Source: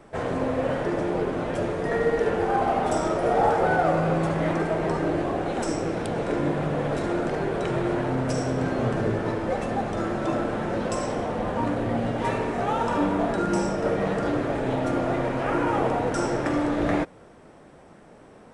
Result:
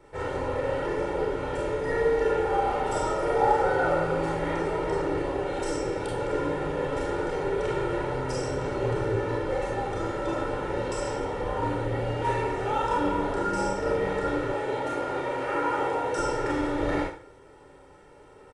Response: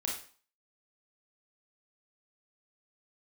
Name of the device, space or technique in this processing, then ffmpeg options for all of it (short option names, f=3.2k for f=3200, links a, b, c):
microphone above a desk: -filter_complex "[0:a]aecho=1:1:2.2:0.77[a];[1:a]atrim=start_sample=2205[b];[a][b]afir=irnorm=-1:irlink=0,asettb=1/sr,asplit=3[c][d][e];[c]atrim=end=14.544[f];[d]atrim=start=14.54:end=16.18,asetpts=PTS-STARTPTS,afade=t=in:d=0.004:c=qsin,afade=t=out:st=1.636:d=0.004:c=qsin,highpass=f=250:p=1[g];[e]atrim=start=16.176[h];[f][g]acrossfade=d=0.004:c1=hsin:c2=qsin[i];[i][h]acrossfade=d=0.004:c1=qsin:c2=hsin,volume=-6.5dB"